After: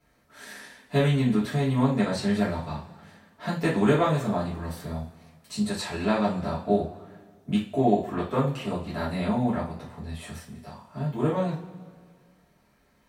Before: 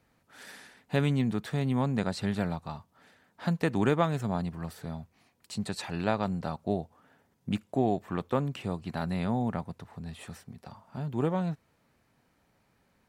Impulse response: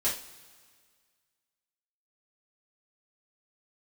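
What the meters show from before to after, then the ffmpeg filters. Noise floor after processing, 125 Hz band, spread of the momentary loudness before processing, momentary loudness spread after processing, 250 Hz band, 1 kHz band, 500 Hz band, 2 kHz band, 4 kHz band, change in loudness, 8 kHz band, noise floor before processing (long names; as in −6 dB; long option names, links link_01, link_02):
−64 dBFS, +3.5 dB, 18 LU, 19 LU, +5.0 dB, +4.5 dB, +5.5 dB, +4.5 dB, +5.0 dB, +4.5 dB, +5.5 dB, −71 dBFS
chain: -filter_complex "[1:a]atrim=start_sample=2205[link_01];[0:a][link_01]afir=irnorm=-1:irlink=0,volume=-2.5dB"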